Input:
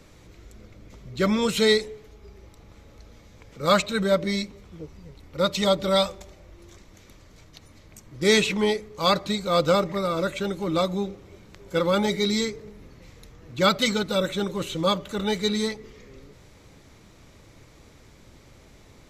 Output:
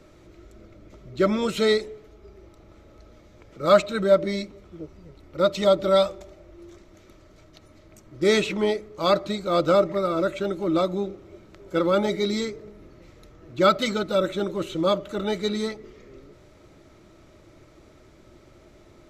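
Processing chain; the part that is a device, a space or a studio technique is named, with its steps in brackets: inside a helmet (treble shelf 5.3 kHz -5.5 dB; small resonant body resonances 350/610/1300 Hz, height 11 dB, ringing for 45 ms); trim -3 dB

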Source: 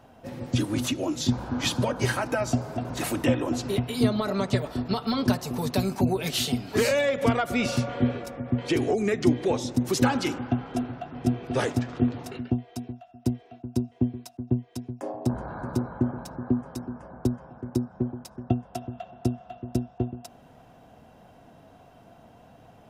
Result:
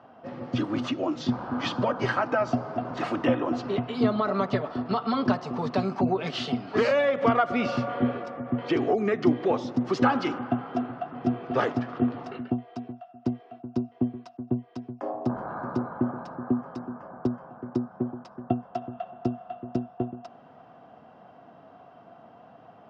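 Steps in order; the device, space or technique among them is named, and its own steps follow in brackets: kitchen radio (cabinet simulation 160–4200 Hz, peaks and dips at 710 Hz +4 dB, 1.2 kHz +8 dB, 2.4 kHz -4 dB, 3.8 kHz -7 dB)

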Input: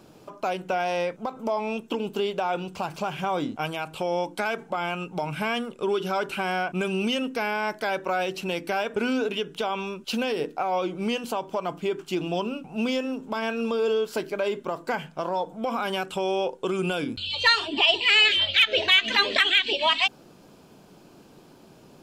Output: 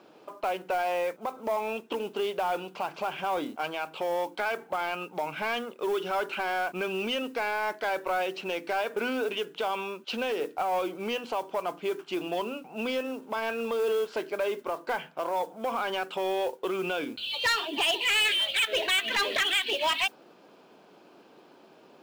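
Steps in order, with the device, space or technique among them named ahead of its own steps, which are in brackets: carbon microphone (band-pass 350–3600 Hz; saturation -20.5 dBFS, distortion -11 dB; modulation noise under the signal 24 dB)

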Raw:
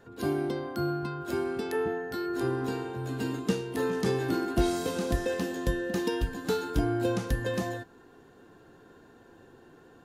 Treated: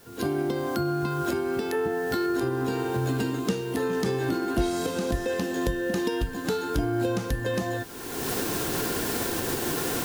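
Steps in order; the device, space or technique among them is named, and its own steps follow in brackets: cheap recorder with automatic gain (white noise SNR 26 dB; recorder AGC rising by 34 dB/s)

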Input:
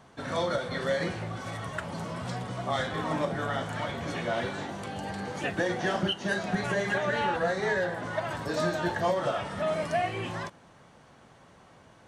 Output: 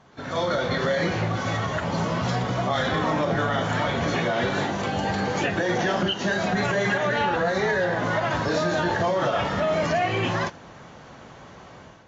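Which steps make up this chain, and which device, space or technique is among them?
low-bitrate web radio (level rider gain up to 10 dB; peak limiter -15.5 dBFS, peak gain reduction 9.5 dB; AAC 24 kbps 16 kHz)

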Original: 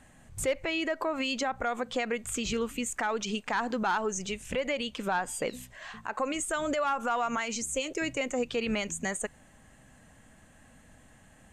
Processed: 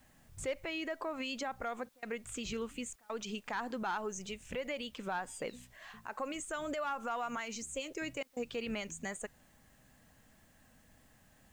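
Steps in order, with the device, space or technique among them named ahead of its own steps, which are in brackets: worn cassette (low-pass 8.6 kHz; wow and flutter 29 cents; level dips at 1.89/2.96/8.23 s, 134 ms -28 dB; white noise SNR 31 dB); trim -8 dB

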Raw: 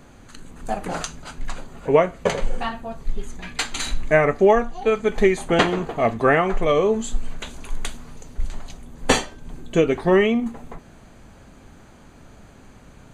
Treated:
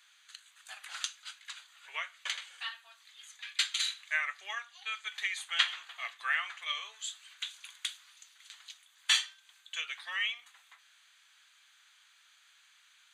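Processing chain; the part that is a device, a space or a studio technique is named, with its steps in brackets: headphones lying on a table (high-pass 1.5 kHz 24 dB/octave; peaking EQ 3.5 kHz +9.5 dB 0.55 oct); trim -7.5 dB

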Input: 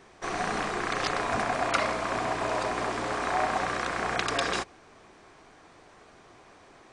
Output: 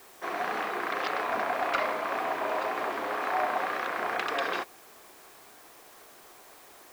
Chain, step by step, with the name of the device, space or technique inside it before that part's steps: tape answering machine (band-pass 350–3100 Hz; saturation -16 dBFS, distortion -24 dB; wow and flutter; white noise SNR 23 dB)

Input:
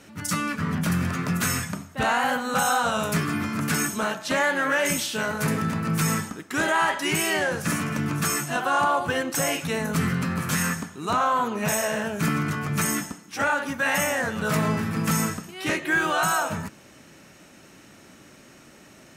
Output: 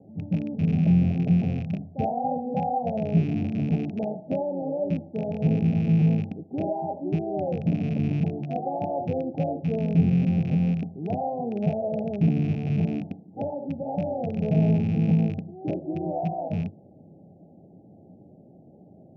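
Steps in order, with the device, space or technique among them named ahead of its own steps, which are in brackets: Chebyshev low-pass 810 Hz, order 8; car door speaker with a rattle (rattle on loud lows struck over -31 dBFS, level -35 dBFS; cabinet simulation 83–6600 Hz, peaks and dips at 96 Hz +8 dB, 170 Hz +7 dB, 5.6 kHz +7 dB)

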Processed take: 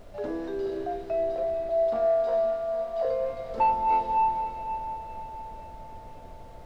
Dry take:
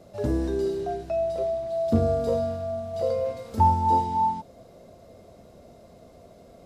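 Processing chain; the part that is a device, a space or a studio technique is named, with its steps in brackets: aircraft cabin announcement (band-pass 440–3100 Hz; saturation -16.5 dBFS, distortion -20 dB; brown noise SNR 15 dB); 1.69–3.05 s: resonant low shelf 540 Hz -7 dB, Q 3; echo that smears into a reverb 500 ms, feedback 46%, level -9 dB

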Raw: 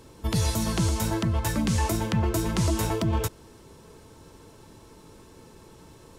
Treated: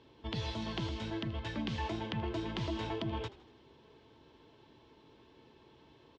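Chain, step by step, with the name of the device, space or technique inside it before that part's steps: frequency-shifting delay pedal into a guitar cabinet (frequency-shifting echo 80 ms, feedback 51%, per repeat -45 Hz, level -18 dB; cabinet simulation 80–4100 Hz, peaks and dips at 94 Hz -9 dB, 180 Hz -10 dB, 520 Hz -4 dB, 1.3 kHz -6 dB, 3.2 kHz +6 dB); 0.89–1.54 s: peaking EQ 870 Hz -5.5 dB 0.64 oct; trim -8 dB

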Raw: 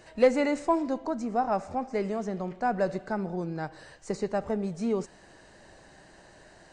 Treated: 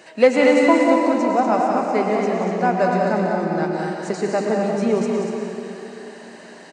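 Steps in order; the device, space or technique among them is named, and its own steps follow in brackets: stadium PA (high-pass 180 Hz 24 dB/octave; peaking EQ 2.5 kHz +4 dB 0.79 oct; loudspeakers at several distances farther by 63 m -7 dB, 82 m -6 dB; reverberation RT60 3.2 s, pre-delay 100 ms, DRR 1.5 dB); trim +7 dB

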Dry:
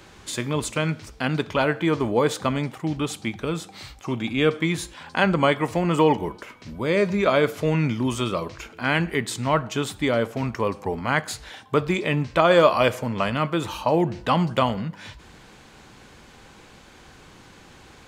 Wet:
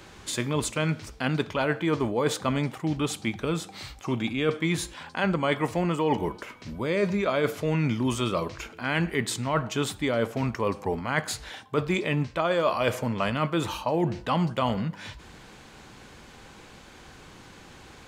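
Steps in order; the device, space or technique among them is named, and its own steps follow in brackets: compression on the reversed sound (reverse; compression 6:1, threshold -21 dBFS, peak gain reduction 10 dB; reverse)

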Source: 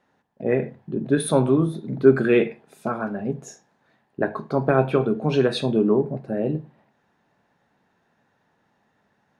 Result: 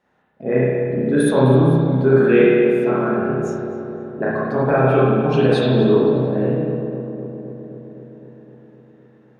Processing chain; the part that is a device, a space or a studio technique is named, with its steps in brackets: dub delay into a spring reverb (filtered feedback delay 257 ms, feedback 74%, low-pass 1.8 kHz, level -8.5 dB; spring tank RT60 1.5 s, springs 31/47 ms, chirp 60 ms, DRR -7 dB); trim -2.5 dB

